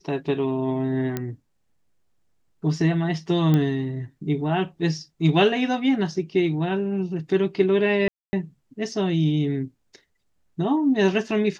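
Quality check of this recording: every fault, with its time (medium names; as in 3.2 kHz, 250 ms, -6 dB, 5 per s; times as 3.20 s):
1.17 s: pop -13 dBFS
3.54 s: pop -11 dBFS
8.08–8.33 s: dropout 250 ms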